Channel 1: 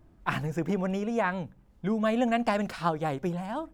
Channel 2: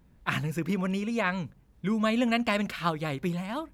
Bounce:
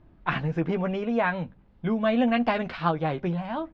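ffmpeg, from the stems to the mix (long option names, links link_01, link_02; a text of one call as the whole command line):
ffmpeg -i stem1.wav -i stem2.wav -filter_complex "[0:a]volume=2dB[link_01];[1:a]adelay=12,volume=-6dB[link_02];[link_01][link_02]amix=inputs=2:normalize=0,lowpass=frequency=4000:width=0.5412,lowpass=frequency=4000:width=1.3066" out.wav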